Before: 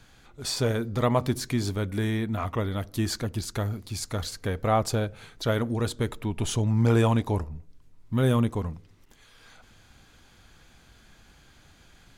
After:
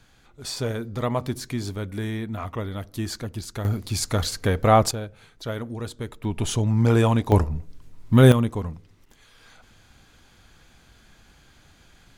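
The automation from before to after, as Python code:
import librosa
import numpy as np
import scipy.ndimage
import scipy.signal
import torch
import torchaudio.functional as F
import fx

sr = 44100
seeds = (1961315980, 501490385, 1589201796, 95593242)

y = fx.gain(x, sr, db=fx.steps((0.0, -2.0), (3.65, 7.0), (4.91, -5.0), (6.24, 2.5), (7.32, 10.0), (8.32, 1.0)))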